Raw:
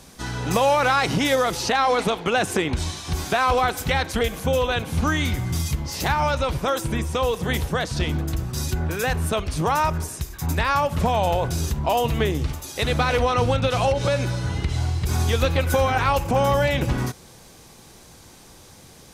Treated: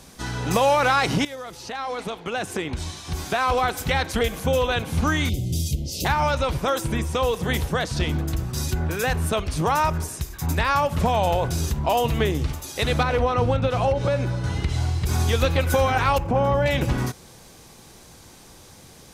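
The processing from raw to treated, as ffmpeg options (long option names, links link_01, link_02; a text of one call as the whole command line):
ffmpeg -i in.wav -filter_complex "[0:a]asettb=1/sr,asplit=3[link_01][link_02][link_03];[link_01]atrim=end=5.294[link_04];[link_02]atrim=start=5.29:end=6.05,asetpts=PTS-STARTPTS,afade=type=in:duration=0.004:curve=qsin,afade=type=out:start_time=0.756:duration=0.004:curve=qsin,asuperstop=centerf=1300:order=8:qfactor=0.6[link_05];[link_03]atrim=start=6.046[link_06];[link_04][link_05]acrossfade=duration=0.004:curve1=hsin:curve2=qsin[link_07];[link_07][link_06]acrossfade=duration=0.004:curve1=qsin:curve2=hsin,asettb=1/sr,asplit=3[link_08][link_09][link_10];[link_08]atrim=end=13.034[link_11];[link_09]atrim=start=13.03:end=14.44,asetpts=PTS-STARTPTS,afade=type=in:duration=0.004:curve=qsin,afade=type=out:start_time=1.406:duration=0.004:curve=qsin,highshelf=frequency=2400:gain=-10.5[link_12];[link_10]atrim=start=14.436[link_13];[link_11][link_12]acrossfade=duration=0.004:curve1=hsin:curve2=qsin[link_14];[link_14][link_13]acrossfade=duration=0.004:curve1=qsin:curve2=hsin,asettb=1/sr,asplit=3[link_15][link_16][link_17];[link_15]atrim=end=16.184[link_18];[link_16]atrim=start=16.18:end=16.66,asetpts=PTS-STARTPTS,afade=type=in:duration=0.004:curve=qsin,afade=type=out:start_time=0.476:duration=0.004:curve=qsin,lowpass=frequency=1200:poles=1[link_19];[link_17]atrim=start=16.656[link_20];[link_18][link_19]acrossfade=duration=0.004:curve1=hsin:curve2=qsin[link_21];[link_21][link_20]acrossfade=duration=0.004:curve1=qsin:curve2=hsin,asplit=2[link_22][link_23];[link_22]atrim=end=1.25,asetpts=PTS-STARTPTS,afade=type=out:start_time=1.246:duration=0.004:curve=hsin:silence=0.133352[link_24];[link_23]atrim=start=1.25,asetpts=PTS-STARTPTS,afade=type=in:duration=2.89:silence=0.133352[link_25];[link_24][link_25]concat=n=2:v=0:a=1" out.wav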